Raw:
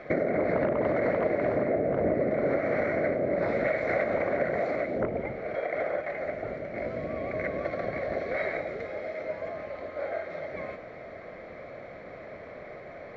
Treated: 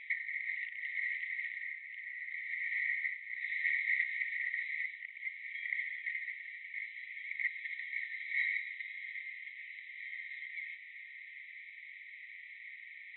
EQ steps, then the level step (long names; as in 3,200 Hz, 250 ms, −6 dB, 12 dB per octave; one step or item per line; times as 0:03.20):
linear-phase brick-wall band-pass 1,800–4,000 Hz
high-frequency loss of the air 96 metres
dynamic equaliser 2,500 Hz, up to −4 dB, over −56 dBFS, Q 5.3
+5.0 dB